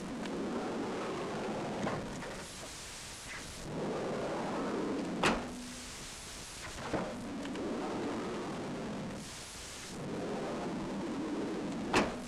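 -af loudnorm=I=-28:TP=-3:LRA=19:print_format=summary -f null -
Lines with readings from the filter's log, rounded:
Input Integrated:    -38.1 LUFS
Input True Peak:     -18.2 dBTP
Input LRA:             2.9 LU
Input Threshold:     -48.1 LUFS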